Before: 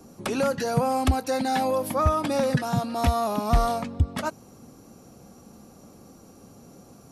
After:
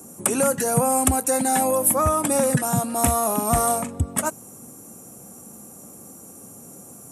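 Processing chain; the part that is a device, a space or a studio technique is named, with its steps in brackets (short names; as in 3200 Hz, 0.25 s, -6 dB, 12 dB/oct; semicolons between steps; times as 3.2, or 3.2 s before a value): budget condenser microphone (HPF 100 Hz; resonant high shelf 6300 Hz +12 dB, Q 3); 3–3.99 doubler 41 ms -12.5 dB; gain +3 dB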